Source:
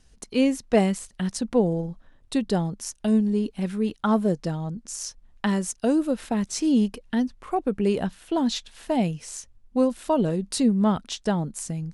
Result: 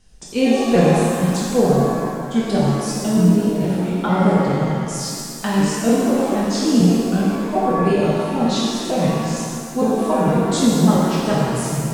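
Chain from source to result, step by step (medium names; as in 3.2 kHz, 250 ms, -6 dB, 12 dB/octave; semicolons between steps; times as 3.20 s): pitch shift switched off and on -3 st, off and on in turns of 151 ms; pitch-shifted reverb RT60 2.1 s, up +7 st, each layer -8 dB, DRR -6.5 dB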